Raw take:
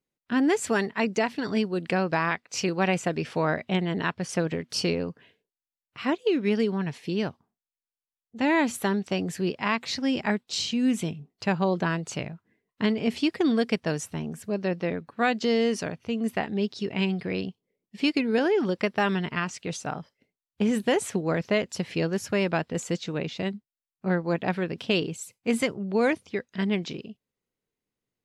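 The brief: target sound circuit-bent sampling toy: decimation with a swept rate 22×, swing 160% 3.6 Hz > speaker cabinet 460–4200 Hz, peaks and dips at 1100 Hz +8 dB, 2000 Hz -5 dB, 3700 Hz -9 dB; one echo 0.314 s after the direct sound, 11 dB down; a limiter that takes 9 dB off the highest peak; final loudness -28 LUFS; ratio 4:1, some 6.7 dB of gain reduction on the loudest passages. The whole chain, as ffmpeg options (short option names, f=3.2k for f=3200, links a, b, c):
-af "acompressor=threshold=-27dB:ratio=4,alimiter=limit=-23.5dB:level=0:latency=1,aecho=1:1:314:0.282,acrusher=samples=22:mix=1:aa=0.000001:lfo=1:lforange=35.2:lforate=3.6,highpass=460,equalizer=f=1.1k:t=q:w=4:g=8,equalizer=f=2k:t=q:w=4:g=-5,equalizer=f=3.7k:t=q:w=4:g=-9,lowpass=f=4.2k:w=0.5412,lowpass=f=4.2k:w=1.3066,volume=10dB"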